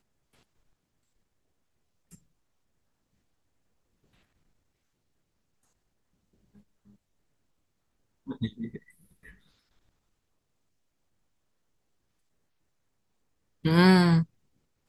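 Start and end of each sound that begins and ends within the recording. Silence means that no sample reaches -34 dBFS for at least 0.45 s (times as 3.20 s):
8.29–8.76 s
13.65–14.23 s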